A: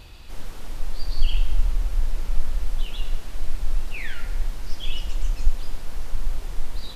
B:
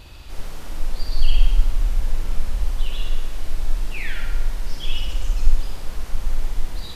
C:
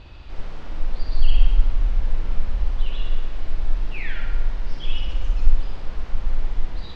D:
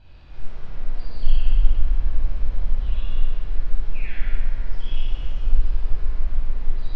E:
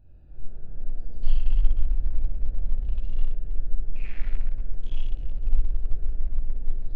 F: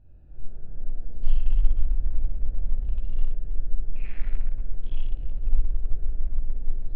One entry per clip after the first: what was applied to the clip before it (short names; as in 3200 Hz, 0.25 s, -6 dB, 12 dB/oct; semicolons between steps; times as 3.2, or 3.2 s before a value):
flutter echo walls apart 10.3 m, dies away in 0.85 s; gain +1.5 dB
air absorption 200 m
reverb RT60 1.9 s, pre-delay 18 ms, DRR -7.5 dB; gain -15 dB
Wiener smoothing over 41 samples; gain -4 dB
air absorption 190 m